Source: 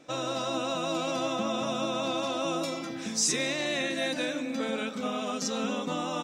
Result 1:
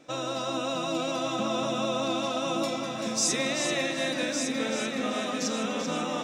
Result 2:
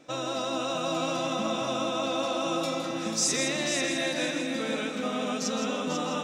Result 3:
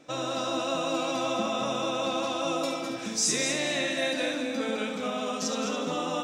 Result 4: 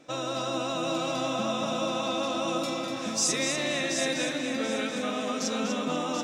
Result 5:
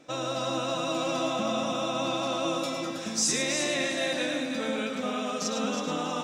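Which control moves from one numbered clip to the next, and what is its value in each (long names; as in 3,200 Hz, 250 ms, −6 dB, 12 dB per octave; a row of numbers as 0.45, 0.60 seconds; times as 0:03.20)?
echo machine with several playback heads, delay time: 386, 164, 70, 244, 107 milliseconds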